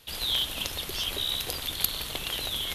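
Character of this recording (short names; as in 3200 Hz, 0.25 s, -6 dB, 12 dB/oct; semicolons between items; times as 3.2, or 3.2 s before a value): noise floor -38 dBFS; spectral tilt -1.5 dB/oct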